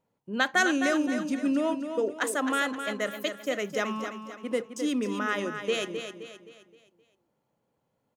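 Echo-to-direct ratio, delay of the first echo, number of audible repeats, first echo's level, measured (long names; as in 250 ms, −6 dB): −7.0 dB, 261 ms, 4, −8.0 dB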